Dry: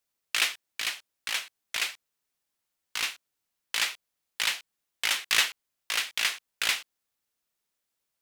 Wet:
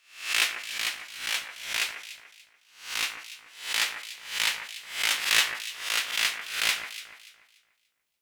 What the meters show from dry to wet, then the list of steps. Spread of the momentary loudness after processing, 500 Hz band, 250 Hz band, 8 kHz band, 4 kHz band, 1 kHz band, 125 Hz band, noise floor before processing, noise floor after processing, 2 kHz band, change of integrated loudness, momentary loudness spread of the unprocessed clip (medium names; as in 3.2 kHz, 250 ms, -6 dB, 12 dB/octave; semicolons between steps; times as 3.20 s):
17 LU, +2.0 dB, +2.5 dB, +1.5 dB, +1.5 dB, +2.0 dB, no reading, -83 dBFS, -72 dBFS, +2.0 dB, +1.5 dB, 11 LU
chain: reverse spectral sustain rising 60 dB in 0.48 s; on a send: echo whose repeats swap between lows and highs 145 ms, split 2.2 kHz, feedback 53%, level -8 dB; on the sum: trim -1 dB